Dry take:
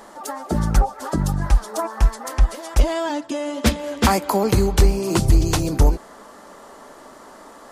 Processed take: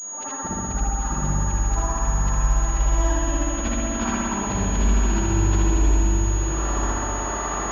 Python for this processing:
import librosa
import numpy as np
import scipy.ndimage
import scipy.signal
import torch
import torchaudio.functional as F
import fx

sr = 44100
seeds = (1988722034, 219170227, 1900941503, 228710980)

p1 = fx.frame_reverse(x, sr, frame_ms=163.0)
p2 = fx.recorder_agc(p1, sr, target_db=-15.0, rise_db_per_s=31.0, max_gain_db=30)
p3 = fx.low_shelf(p2, sr, hz=84.0, db=-7.0)
p4 = fx.notch(p3, sr, hz=2100.0, q=9.7)
p5 = p4 + fx.echo_diffused(p4, sr, ms=942, feedback_pct=40, wet_db=-4.0, dry=0)
p6 = fx.rev_spring(p5, sr, rt60_s=3.0, pass_ms=(60,), chirp_ms=25, drr_db=-4.5)
p7 = fx.dynamic_eq(p6, sr, hz=550.0, q=0.81, threshold_db=-33.0, ratio=4.0, max_db=-8)
p8 = fx.pwm(p7, sr, carrier_hz=6700.0)
y = F.gain(torch.from_numpy(p8), -5.5).numpy()